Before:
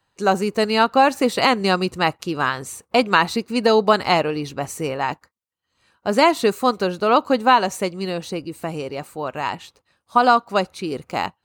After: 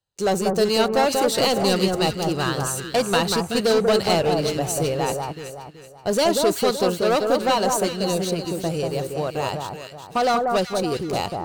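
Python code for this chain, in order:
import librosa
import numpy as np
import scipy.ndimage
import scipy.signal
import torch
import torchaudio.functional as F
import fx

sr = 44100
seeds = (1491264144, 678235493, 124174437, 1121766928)

y = fx.graphic_eq(x, sr, hz=(250, 1000, 2000), db=(-10, -10, -11))
y = fx.leveller(y, sr, passes=3)
y = fx.echo_alternate(y, sr, ms=189, hz=1500.0, feedback_pct=59, wet_db=-3.0)
y = F.gain(torch.from_numpy(y), -4.0).numpy()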